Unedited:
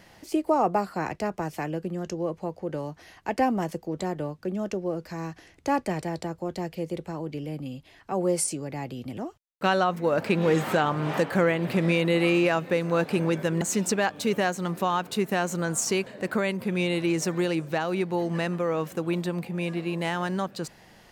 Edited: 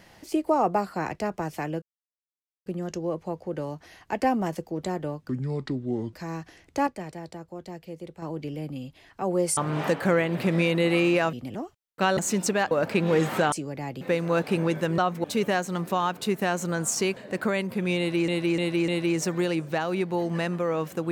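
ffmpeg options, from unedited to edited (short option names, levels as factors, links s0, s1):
-filter_complex "[0:a]asplit=17[s0][s1][s2][s3][s4][s5][s6][s7][s8][s9][s10][s11][s12][s13][s14][s15][s16];[s0]atrim=end=1.82,asetpts=PTS-STARTPTS,afade=t=out:st=1.816:d=0.004:c=hsin,apad=pad_dur=0.84[s17];[s1]atrim=start=1.82:end=4.454,asetpts=PTS-STARTPTS,afade=t=in:d=0.004:c=hsin[s18];[s2]atrim=start=4.45:end=5.03,asetpts=PTS-STARTPTS,asetrate=30429,aresample=44100[s19];[s3]atrim=start=5.026:end=5.772[s20];[s4]atrim=start=5.768:end=7.122,asetpts=PTS-STARTPTS,volume=0.422[s21];[s5]atrim=start=7.118:end=8.472[s22];[s6]atrim=start=10.868:end=12.632[s23];[s7]atrim=start=8.958:end=9.802[s24];[s8]atrim=start=13.598:end=14.142[s25];[s9]atrim=start=10.058:end=10.872[s26];[s10]atrim=start=8.468:end=8.962[s27];[s11]atrim=start=12.628:end=13.602[s28];[s12]atrim=start=9.798:end=10.062[s29];[s13]atrim=start=14.138:end=17.182[s30];[s14]atrim=start=16.878:end=17.182[s31];[s15]atrim=start=16.878:end=17.182[s32];[s16]atrim=start=16.878[s33];[s17][s18]concat=n=2:v=0:a=1[s34];[s34][s19]acrossfade=d=0.004:c1=hsin:c2=hsin[s35];[s35][s20]acrossfade=d=0.004:c1=hsin:c2=hsin[s36];[s36][s21]acrossfade=d=0.004:c1=hsin:c2=hsin[s37];[s37][s22]acrossfade=d=0.004:c1=hsin:c2=hsin[s38];[s38][s23]acrossfade=d=0.004:c1=hsin:c2=hsin[s39];[s39][s24]acrossfade=d=0.004:c1=hsin:c2=hsin[s40];[s40][s25]acrossfade=d=0.004:c1=hsin:c2=hsin[s41];[s41][s26]acrossfade=d=0.004:c1=hsin:c2=hsin[s42];[s42][s27]acrossfade=d=0.004:c1=hsin:c2=hsin[s43];[s43][s28]acrossfade=d=0.004:c1=hsin:c2=hsin[s44];[s44][s29]acrossfade=d=0.004:c1=hsin:c2=hsin[s45];[s45][s30]acrossfade=d=0.004:c1=hsin:c2=hsin[s46];[s46][s31]acrossfade=d=0.004:c1=hsin:c2=hsin[s47];[s47][s32]acrossfade=d=0.004:c1=hsin:c2=hsin[s48];[s48][s33]acrossfade=d=0.004:c1=hsin:c2=hsin"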